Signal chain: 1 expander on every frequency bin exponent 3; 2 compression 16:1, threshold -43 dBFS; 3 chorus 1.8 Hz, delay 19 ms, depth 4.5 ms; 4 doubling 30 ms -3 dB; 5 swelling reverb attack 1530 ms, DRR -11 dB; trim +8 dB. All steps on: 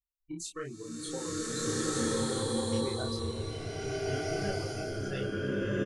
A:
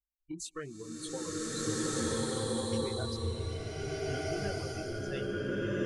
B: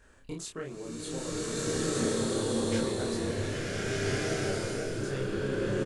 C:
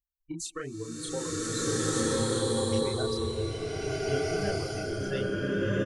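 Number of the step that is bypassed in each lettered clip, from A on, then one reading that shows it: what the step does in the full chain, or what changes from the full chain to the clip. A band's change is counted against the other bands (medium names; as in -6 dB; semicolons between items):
4, loudness change -1.5 LU; 1, 1 kHz band -2.0 dB; 3, loudness change +3.5 LU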